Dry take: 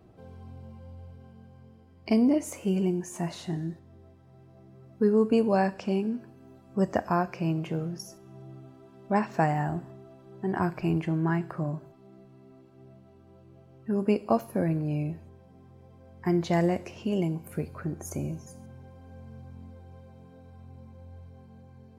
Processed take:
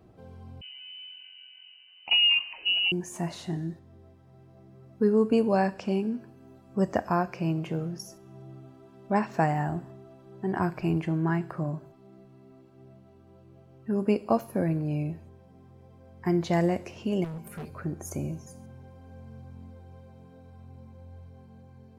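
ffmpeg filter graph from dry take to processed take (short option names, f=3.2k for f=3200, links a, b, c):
-filter_complex "[0:a]asettb=1/sr,asplit=3[a][b][c];[a]atrim=end=0.614[d];[b]atrim=start=0.61:end=2.92,asetpts=PTS-STARTPTS,afade=t=in:d=0.004:c=qsin,afade=t=out:st=2.306:d=0.004:c=qsin,lowpass=f=2.6k:t=q:w=0.5098,lowpass=f=2.6k:t=q:w=0.6013,lowpass=f=2.6k:t=q:w=0.9,lowpass=f=2.6k:t=q:w=2.563,afreqshift=-3100,aecho=1:1:140:0.1,atrim=end_sample=101871[e];[c]atrim=start=2.916[f];[d][e]acrossfade=d=0.004:c1=hsin:c2=qsin[g];[g][f]acrossfade=d=0.004:c1=qsin:c2=hsin,asettb=1/sr,asplit=3[h][i][j];[h]atrim=end=17.244[k];[i]atrim=start=17.24:end=17.7,asetpts=PTS-STARTPTS,afade=t=in:d=0.004:c=qsin,afade=t=out:st=0.456:d=0.004:c=qsin,aecho=1:1:5:0.67,atrim=end_sample=20286,asoftclip=type=hard:threshold=-35dB[l];[j]atrim=start=17.696[m];[k][l]acrossfade=d=0.004:c1=hsin:c2=qsin[n];[n][m]acrossfade=d=0.004:c1=qsin:c2=hsin"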